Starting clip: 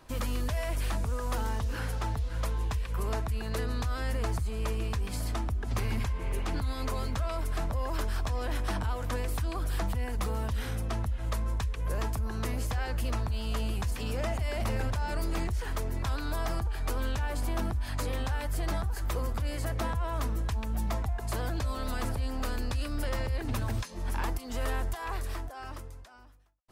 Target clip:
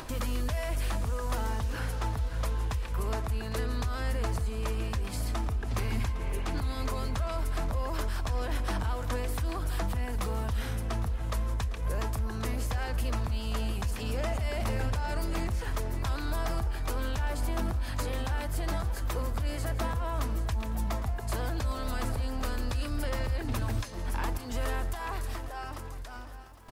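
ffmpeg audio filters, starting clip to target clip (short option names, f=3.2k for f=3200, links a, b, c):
-filter_complex "[0:a]asplit=2[a][b];[b]aecho=0:1:167:0.141[c];[a][c]amix=inputs=2:normalize=0,acompressor=mode=upward:threshold=-32dB:ratio=2.5,asplit=2[d][e];[e]aecho=0:1:808|1616|2424|3232:0.168|0.0722|0.031|0.0133[f];[d][f]amix=inputs=2:normalize=0"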